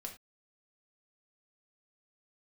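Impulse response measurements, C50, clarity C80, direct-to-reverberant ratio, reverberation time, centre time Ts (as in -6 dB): 9.5 dB, 15.5 dB, 1.0 dB, not exponential, 15 ms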